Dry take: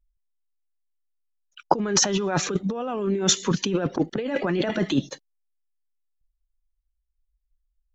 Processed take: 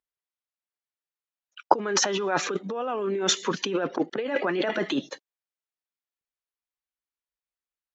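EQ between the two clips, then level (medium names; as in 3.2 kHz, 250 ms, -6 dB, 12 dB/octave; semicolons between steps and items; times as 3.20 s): high-pass 450 Hz 12 dB/octave; low-pass 1.9 kHz 6 dB/octave; peaking EQ 670 Hz -4 dB 1.5 oct; +5.5 dB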